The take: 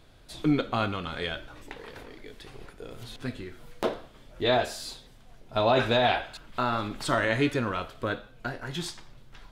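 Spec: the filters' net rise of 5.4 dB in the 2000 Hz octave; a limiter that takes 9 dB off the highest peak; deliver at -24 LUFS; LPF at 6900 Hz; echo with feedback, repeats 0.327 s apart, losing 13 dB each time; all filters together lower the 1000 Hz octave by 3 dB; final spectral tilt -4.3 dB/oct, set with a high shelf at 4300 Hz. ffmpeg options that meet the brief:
-af "lowpass=6.9k,equalizer=f=1k:t=o:g=-8,equalizer=f=2k:t=o:g=8.5,highshelf=f=4.3k:g=6.5,alimiter=limit=-17.5dB:level=0:latency=1,aecho=1:1:327|654|981:0.224|0.0493|0.0108,volume=6.5dB"

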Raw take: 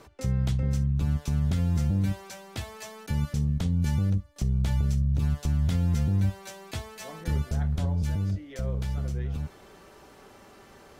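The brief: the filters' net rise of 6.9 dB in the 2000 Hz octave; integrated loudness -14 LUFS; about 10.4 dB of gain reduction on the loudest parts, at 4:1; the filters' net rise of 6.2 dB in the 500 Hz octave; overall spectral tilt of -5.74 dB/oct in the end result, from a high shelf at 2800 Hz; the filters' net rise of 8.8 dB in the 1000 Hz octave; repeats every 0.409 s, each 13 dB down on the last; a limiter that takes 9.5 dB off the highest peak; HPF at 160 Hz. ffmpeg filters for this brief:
-af "highpass=160,equalizer=f=500:t=o:g=5,equalizer=f=1k:t=o:g=8.5,equalizer=f=2k:t=o:g=7,highshelf=f=2.8k:g=-4,acompressor=threshold=-39dB:ratio=4,alimiter=level_in=10.5dB:limit=-24dB:level=0:latency=1,volume=-10.5dB,aecho=1:1:409|818|1227:0.224|0.0493|0.0108,volume=30dB"

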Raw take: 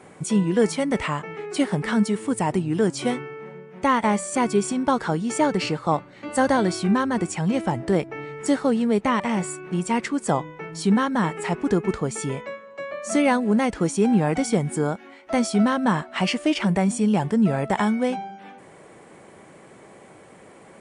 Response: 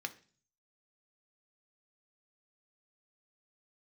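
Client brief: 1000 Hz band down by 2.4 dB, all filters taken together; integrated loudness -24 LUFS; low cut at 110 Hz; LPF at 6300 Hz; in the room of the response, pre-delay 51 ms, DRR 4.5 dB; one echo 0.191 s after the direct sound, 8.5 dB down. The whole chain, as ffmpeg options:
-filter_complex "[0:a]highpass=110,lowpass=6.3k,equalizer=f=1k:t=o:g=-3,aecho=1:1:191:0.376,asplit=2[a][b];[1:a]atrim=start_sample=2205,adelay=51[c];[b][c]afir=irnorm=-1:irlink=0,volume=-5dB[d];[a][d]amix=inputs=2:normalize=0,volume=-1.5dB"

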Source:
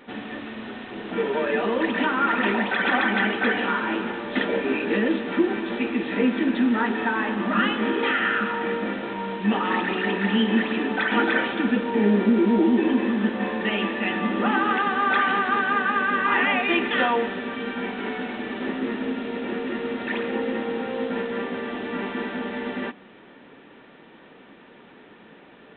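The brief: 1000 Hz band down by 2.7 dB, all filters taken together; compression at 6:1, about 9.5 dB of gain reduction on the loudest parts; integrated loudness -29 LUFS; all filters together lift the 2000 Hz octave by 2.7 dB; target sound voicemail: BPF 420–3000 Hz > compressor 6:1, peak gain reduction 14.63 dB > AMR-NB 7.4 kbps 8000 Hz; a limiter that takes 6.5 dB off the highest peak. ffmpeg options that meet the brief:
-af "equalizer=f=1k:t=o:g=-5.5,equalizer=f=2k:t=o:g=6,acompressor=threshold=-26dB:ratio=6,alimiter=limit=-21.5dB:level=0:latency=1,highpass=420,lowpass=3k,acompressor=threshold=-43dB:ratio=6,volume=17.5dB" -ar 8000 -c:a libopencore_amrnb -b:a 7400

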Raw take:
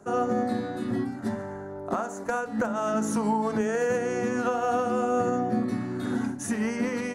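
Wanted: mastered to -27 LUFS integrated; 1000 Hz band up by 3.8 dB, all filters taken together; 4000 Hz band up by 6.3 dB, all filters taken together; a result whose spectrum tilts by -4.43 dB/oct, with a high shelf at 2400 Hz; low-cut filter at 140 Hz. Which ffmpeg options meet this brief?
-af "highpass=140,equalizer=f=1k:t=o:g=4.5,highshelf=f=2.4k:g=4.5,equalizer=f=4k:t=o:g=4,volume=-0.5dB"

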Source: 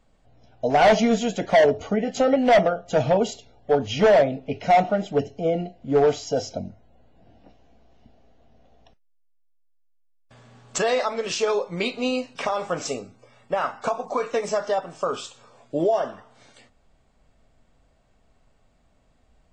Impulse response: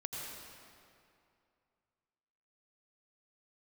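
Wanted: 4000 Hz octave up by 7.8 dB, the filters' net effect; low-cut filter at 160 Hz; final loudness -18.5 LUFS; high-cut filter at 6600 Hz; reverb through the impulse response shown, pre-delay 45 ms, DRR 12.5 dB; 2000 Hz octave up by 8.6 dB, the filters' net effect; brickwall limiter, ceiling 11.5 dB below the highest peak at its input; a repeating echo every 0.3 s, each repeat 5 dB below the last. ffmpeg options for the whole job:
-filter_complex "[0:a]highpass=160,lowpass=6.6k,equalizer=f=2k:t=o:g=8.5,equalizer=f=4k:t=o:g=7.5,alimiter=limit=-12.5dB:level=0:latency=1,aecho=1:1:300|600|900|1200|1500|1800|2100:0.562|0.315|0.176|0.0988|0.0553|0.031|0.0173,asplit=2[a][b];[1:a]atrim=start_sample=2205,adelay=45[c];[b][c]afir=irnorm=-1:irlink=0,volume=-13.5dB[d];[a][d]amix=inputs=2:normalize=0,volume=4.5dB"

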